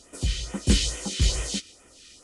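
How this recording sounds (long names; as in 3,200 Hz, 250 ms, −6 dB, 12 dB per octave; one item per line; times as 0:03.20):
phaser sweep stages 2, 2.3 Hz, lowest notch 730–4,000 Hz
Ogg Vorbis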